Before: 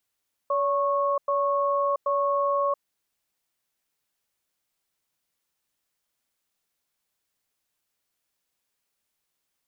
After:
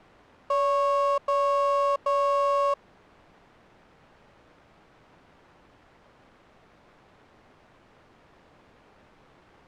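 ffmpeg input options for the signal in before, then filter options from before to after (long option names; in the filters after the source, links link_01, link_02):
-f lavfi -i "aevalsrc='0.0631*(sin(2*PI*568*t)+sin(2*PI*1100*t))*clip(min(mod(t,0.78),0.68-mod(t,0.78))/0.005,0,1)':duration=2.32:sample_rate=44100"
-af "aeval=exprs='val(0)+0.5*0.0126*sgn(val(0))':channel_layout=same,adynamicsmooth=sensitivity=5.5:basefreq=990"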